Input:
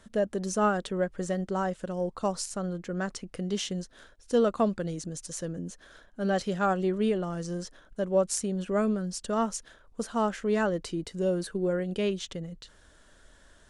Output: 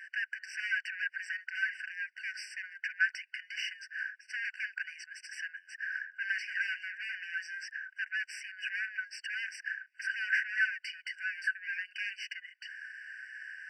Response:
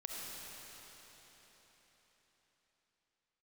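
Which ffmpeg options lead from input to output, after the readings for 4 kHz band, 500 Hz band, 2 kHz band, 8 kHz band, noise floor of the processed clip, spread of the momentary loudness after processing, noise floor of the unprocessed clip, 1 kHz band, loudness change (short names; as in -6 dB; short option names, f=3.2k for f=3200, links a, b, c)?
-2.0 dB, under -40 dB, +10.0 dB, -14.5 dB, -66 dBFS, 11 LU, -58 dBFS, under -30 dB, -6.0 dB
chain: -filter_complex "[0:a]asplit=2[a][b];[b]highpass=f=720:p=1,volume=29dB,asoftclip=type=tanh:threshold=-13dB[c];[a][c]amix=inputs=2:normalize=0,lowpass=f=1.1k:p=1,volume=-6dB,bandpass=f=770:t=q:w=0.7:csg=0,afftfilt=real='re*eq(mod(floor(b*sr/1024/1500),2),1)':imag='im*eq(mod(floor(b*sr/1024/1500),2),1)':win_size=1024:overlap=0.75,volume=7dB"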